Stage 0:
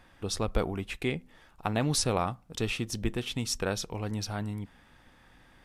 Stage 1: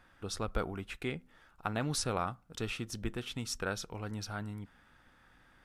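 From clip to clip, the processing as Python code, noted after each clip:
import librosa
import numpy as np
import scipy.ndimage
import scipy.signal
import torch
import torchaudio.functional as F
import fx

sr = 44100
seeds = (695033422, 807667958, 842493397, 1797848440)

y = fx.peak_eq(x, sr, hz=1400.0, db=8.5, octaves=0.42)
y = F.gain(torch.from_numpy(y), -6.5).numpy()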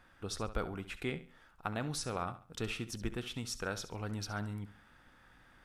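y = fx.echo_feedback(x, sr, ms=68, feedback_pct=30, wet_db=-14)
y = fx.rider(y, sr, range_db=3, speed_s=0.5)
y = F.gain(torch.from_numpy(y), -2.0).numpy()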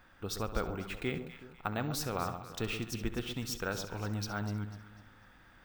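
y = fx.echo_alternate(x, sr, ms=124, hz=1100.0, feedback_pct=59, wet_db=-8)
y = np.repeat(scipy.signal.resample_poly(y, 1, 2), 2)[:len(y)]
y = F.gain(torch.from_numpy(y), 2.0).numpy()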